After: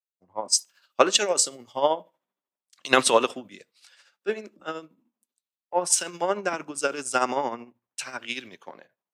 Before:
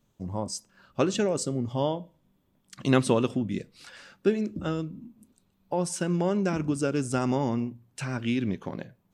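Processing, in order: high-pass 670 Hz 12 dB/octave; hard clipper -12 dBFS, distortion -45 dB; tremolo 13 Hz, depth 55%; three bands expanded up and down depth 100%; trim +9 dB

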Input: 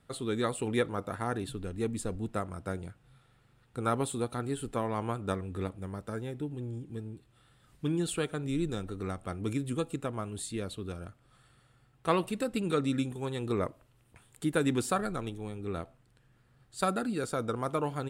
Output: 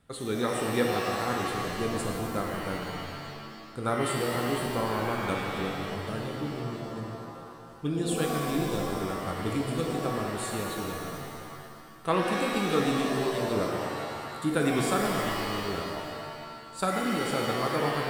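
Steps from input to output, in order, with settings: pitch-shifted reverb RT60 2.1 s, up +7 st, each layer -2 dB, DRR 1 dB

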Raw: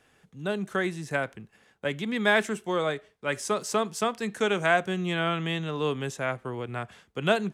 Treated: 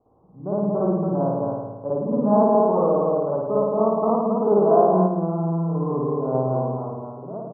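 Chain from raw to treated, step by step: fade out at the end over 1.30 s; steep low-pass 1.1 kHz 72 dB/octave; hum notches 50/100/150 Hz; delay 223 ms -3 dB; spring tank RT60 1.2 s, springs 54 ms, chirp 75 ms, DRR -7.5 dB; 5.06–6.35 s: compression, threshold -20 dBFS, peak gain reduction 8 dB

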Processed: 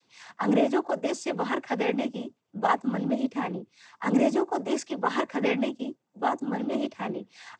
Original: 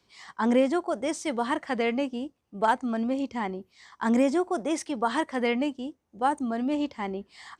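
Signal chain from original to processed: noise-vocoded speech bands 16

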